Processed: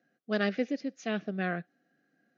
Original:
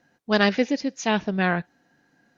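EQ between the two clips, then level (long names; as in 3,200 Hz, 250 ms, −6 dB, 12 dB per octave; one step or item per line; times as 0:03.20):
high-pass filter 160 Hz 24 dB per octave
Butterworth band-reject 940 Hz, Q 2.6
high-shelf EQ 3,600 Hz −11 dB
−8.0 dB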